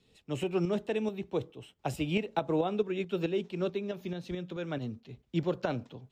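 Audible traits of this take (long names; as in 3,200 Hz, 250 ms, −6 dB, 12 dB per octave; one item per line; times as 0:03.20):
tremolo saw up 4.6 Hz, depth 55%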